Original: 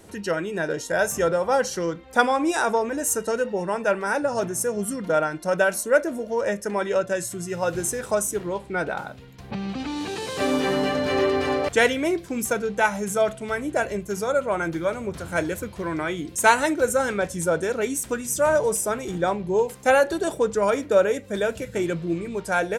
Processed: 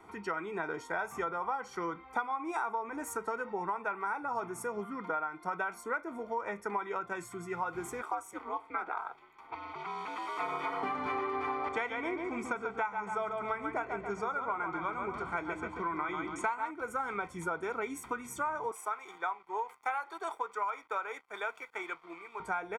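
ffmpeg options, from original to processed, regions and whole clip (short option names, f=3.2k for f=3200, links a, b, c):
-filter_complex "[0:a]asettb=1/sr,asplit=3[a][b][c];[a]atrim=end=4.804[d];[b]atrim=start=4.8:end=5.43,asetpts=PTS-STARTPTS,afade=t=in:d=0.004:c=qsin,afade=t=out:st=0.626:d=0.004:c=qsin,acrossover=split=3100[e][f];[f]acompressor=threshold=-49dB:ratio=4:attack=1:release=60[g];[e][g]amix=inputs=2:normalize=0,lowshelf=f=94:g=-11.5[h];[c]atrim=start=5.426[i];[d][h]acrossfade=d=0.004:c1=hsin:c2=qsin[j];[j][i]acrossfade=d=0.004:c1=qsin:c2=hsin,asettb=1/sr,asplit=3[k][l][m];[k]atrim=end=8.024[n];[l]atrim=start=8.02:end=10.83,asetpts=PTS-STARTPTS,afade=t=in:d=0.004:c=qsin,afade=t=out:st=2.806:d=0.004:c=qsin,highpass=430,aeval=exprs='val(0)*sin(2*PI*110*n/s)':c=same[o];[m]atrim=start=10.826[p];[n][o]acrossfade=d=0.004:c1=hsin:c2=qsin[q];[q][p]acrossfade=d=0.004:c1=qsin:c2=hsin,asettb=1/sr,asplit=3[r][s][t];[r]atrim=end=11.524[u];[s]atrim=start=11.52:end=16.71,asetpts=PTS-STARTPTS,afade=t=in:d=0.004:c=qsin,afade=t=out:st=5.186:d=0.004:c=qsin,lowpass=f=8.5k:w=0.5412,lowpass=f=8.5k:w=1.3066,asplit=2[v][w];[w]adelay=138,lowpass=f=3.4k:p=1,volume=-6dB,asplit=2[x][y];[y]adelay=138,lowpass=f=3.4k:p=1,volume=0.4,asplit=2[z][aa];[aa]adelay=138,lowpass=f=3.4k:p=1,volume=0.4,asplit=2[ab][ac];[ac]adelay=138,lowpass=f=3.4k:p=1,volume=0.4,asplit=2[ad][ae];[ae]adelay=138,lowpass=f=3.4k:p=1,volume=0.4[af];[v][x][z][ab][ad][af]amix=inputs=6:normalize=0,atrim=end_sample=228879[ag];[t]atrim=start=16.706[ah];[u][ag]acrossfade=d=0.004:c1=hsin:c2=qsin[ai];[ai][ah]acrossfade=d=0.004:c1=qsin:c2=hsin,asettb=1/sr,asplit=3[aj][ak][al];[aj]atrim=end=18.714[am];[ak]atrim=start=18.71:end=22.4,asetpts=PTS-STARTPTS,afade=t=in:d=0.004:c=qsin,afade=t=out:st=3.686:d=0.004:c=qsin,highpass=710,aeval=exprs='sgn(val(0))*max(abs(val(0))-0.00316,0)':c=same[an];[al]atrim=start=22.396[ao];[am][an]acrossfade=d=0.004:c1=hsin:c2=qsin[ap];[ap][ao]acrossfade=d=0.004:c1=qsin:c2=hsin,acrossover=split=420 2100:gain=0.112 1 0.0794[aq][ar][as];[aq][ar][as]amix=inputs=3:normalize=0,aecho=1:1:0.9:0.88,acompressor=threshold=-31dB:ratio=8"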